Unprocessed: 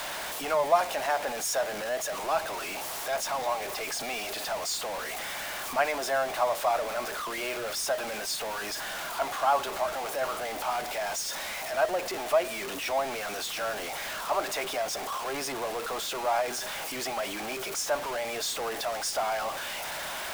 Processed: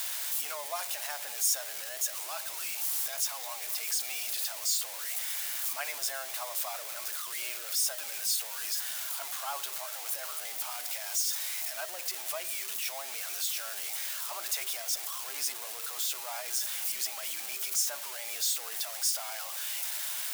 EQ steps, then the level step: differentiator; +4.0 dB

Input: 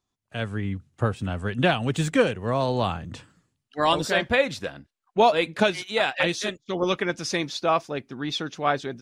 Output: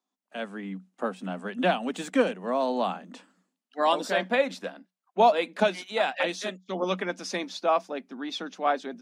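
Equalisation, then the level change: rippled Chebyshev high-pass 180 Hz, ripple 6 dB; 0.0 dB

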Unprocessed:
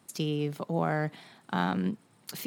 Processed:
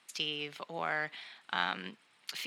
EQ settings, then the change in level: band-pass 2700 Hz, Q 1.3; +7.0 dB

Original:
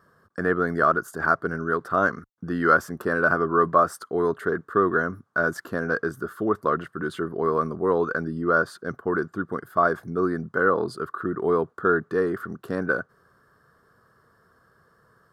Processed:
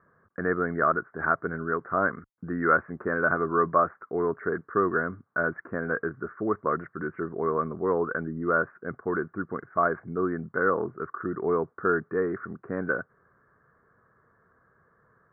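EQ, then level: steep low-pass 2300 Hz 96 dB/oct; -3.5 dB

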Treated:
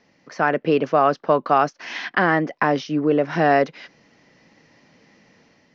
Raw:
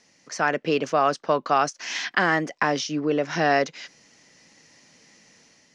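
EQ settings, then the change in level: LPF 6000 Hz 24 dB/oct; air absorption 110 m; high shelf 2000 Hz -8 dB; +5.5 dB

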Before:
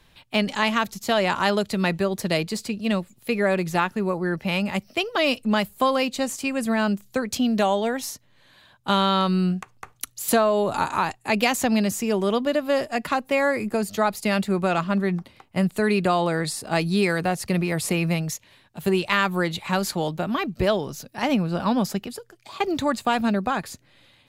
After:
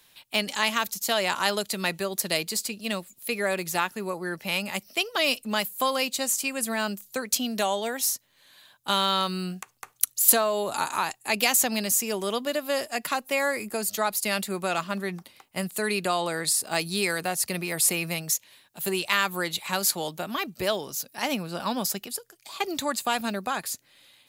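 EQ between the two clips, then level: RIAA curve recording; low shelf 440 Hz +3 dB; -4.5 dB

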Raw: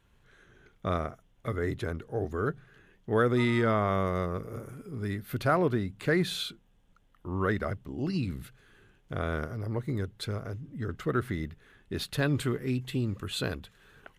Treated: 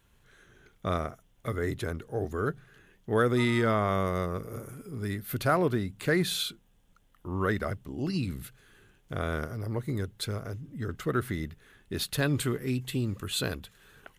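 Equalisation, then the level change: high shelf 5900 Hz +10 dB; 0.0 dB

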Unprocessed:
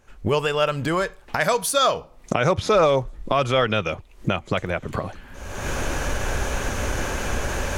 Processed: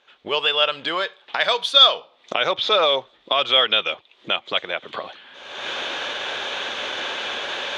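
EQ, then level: HPF 470 Hz 12 dB/oct; synth low-pass 3500 Hz, resonance Q 6.4; -1.0 dB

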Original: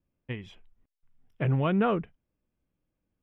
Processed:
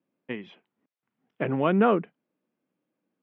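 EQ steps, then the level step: HPF 200 Hz 24 dB/oct; air absorption 270 m; +6.0 dB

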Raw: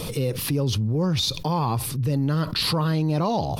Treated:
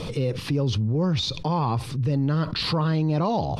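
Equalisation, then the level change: air absorption 100 m; 0.0 dB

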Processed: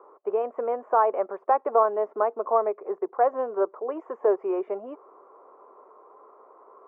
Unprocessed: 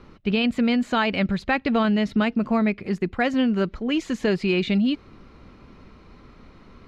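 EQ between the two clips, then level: elliptic band-pass 400–1100 Hz, stop band 60 dB; tilt +3 dB/oct; +7.0 dB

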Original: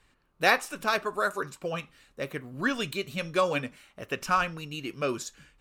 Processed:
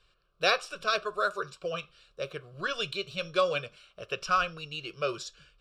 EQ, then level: synth low-pass 5900 Hz, resonance Q 13; bell 86 Hz -5.5 dB 0.74 oct; fixed phaser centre 1300 Hz, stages 8; 0.0 dB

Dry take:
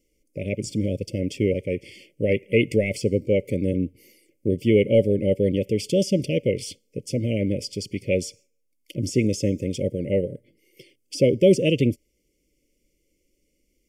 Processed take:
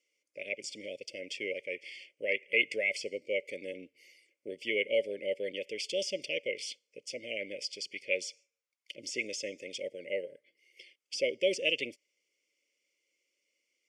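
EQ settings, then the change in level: resonant high-pass 1100 Hz, resonance Q 1.6; air absorption 110 m; high shelf 10000 Hz +6.5 dB; 0.0 dB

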